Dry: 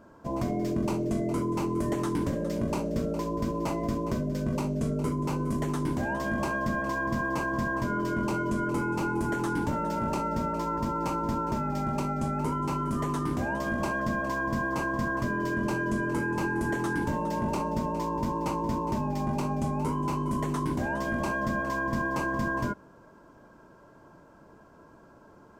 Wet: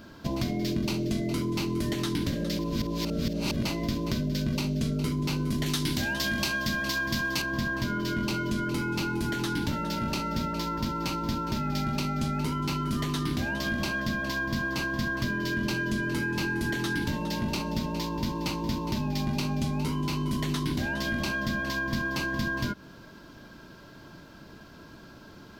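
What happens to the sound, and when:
0:02.59–0:03.65: reverse
0:05.66–0:07.42: high-shelf EQ 2,200 Hz +9.5 dB
whole clip: high-shelf EQ 2,100 Hz +8.5 dB; downward compressor, threshold −32 dBFS; octave-band graphic EQ 500/1,000/4,000/8,000 Hz −7/−9/+10/−11 dB; level +8.5 dB

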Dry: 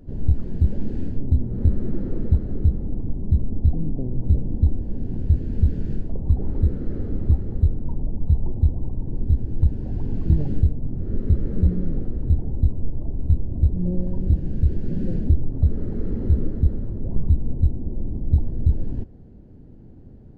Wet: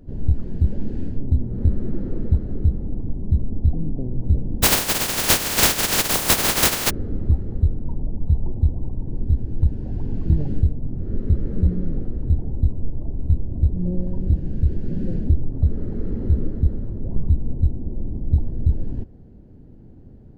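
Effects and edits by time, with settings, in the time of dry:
0:04.62–0:06.89: compressing power law on the bin magnitudes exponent 0.12

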